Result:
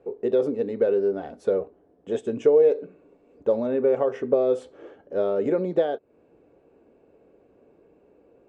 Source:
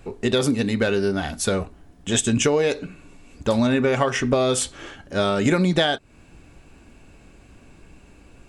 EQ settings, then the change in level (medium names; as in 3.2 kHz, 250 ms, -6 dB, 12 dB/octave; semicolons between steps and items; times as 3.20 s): band-pass filter 470 Hz, Q 3.6; +4.5 dB